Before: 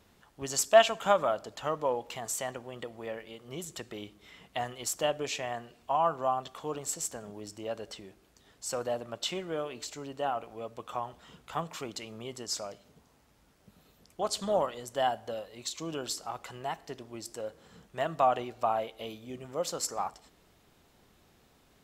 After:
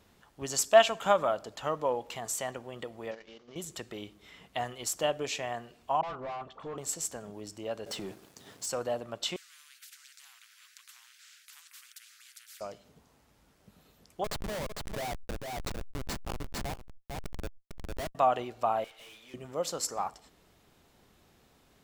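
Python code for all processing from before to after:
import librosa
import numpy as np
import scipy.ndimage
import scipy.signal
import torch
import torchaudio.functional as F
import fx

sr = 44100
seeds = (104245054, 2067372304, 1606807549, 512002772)

y = fx.chain(x, sr, fx.cvsd(bps=32000),
    fx.peak_eq(hz=120.0, db=-13.5, octaves=0.3),
    fx.level_steps(step_db=10), at=(3.11, 3.56))
y = fx.chain(y, sr, fx.dispersion(late='highs', ms=52.0, hz=970.0),
    fx.clip_hard(threshold_db=-34.0),
    fx.spacing_loss(db_at_10k=23), at=(6.01, 6.78))
y = fx.chain(y, sr, fx.highpass(hz=100.0, slope=24),
    fx.peak_eq(hz=2100.0, db=-3.0, octaves=2.3),
    fx.leveller(passes=3), at=(7.86, 8.66))
y = fx.chain(y, sr, fx.cheby_ripple_highpass(hz=1500.0, ripple_db=3),
    fx.high_shelf(hz=2200.0, db=-8.0),
    fx.spectral_comp(ratio=10.0), at=(9.36, 12.61))
y = fx.chain(y, sr, fx.schmitt(flips_db=-31.0),
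    fx.echo_single(ms=452, db=-15.0),
    fx.pre_swell(db_per_s=24.0), at=(14.24, 18.15))
y = fx.chain(y, sr, fx.highpass(hz=1100.0, slope=6),
    fx.peak_eq(hz=2200.0, db=10.5, octaves=2.7),
    fx.tube_stage(drive_db=50.0, bias=0.4), at=(18.84, 19.34))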